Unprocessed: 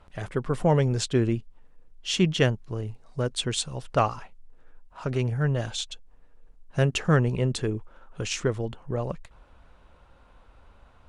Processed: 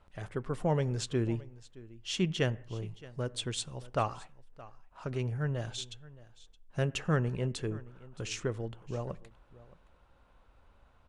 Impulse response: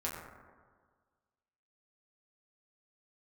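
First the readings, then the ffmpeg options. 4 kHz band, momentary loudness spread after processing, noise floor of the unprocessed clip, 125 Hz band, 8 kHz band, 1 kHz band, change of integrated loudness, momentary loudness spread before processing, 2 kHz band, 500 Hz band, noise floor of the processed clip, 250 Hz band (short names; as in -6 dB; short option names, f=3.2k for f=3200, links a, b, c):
-8.0 dB, 20 LU, -56 dBFS, -7.5 dB, -8.0 dB, -8.0 dB, -7.5 dB, 13 LU, -8.0 dB, -8.0 dB, -63 dBFS, -8.0 dB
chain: -filter_complex "[0:a]aecho=1:1:620:0.1,asplit=2[a][b];[1:a]atrim=start_sample=2205,afade=t=out:st=0.34:d=0.01,atrim=end_sample=15435,asetrate=61740,aresample=44100[c];[b][c]afir=irnorm=-1:irlink=0,volume=-17.5dB[d];[a][d]amix=inputs=2:normalize=0,volume=-8.5dB"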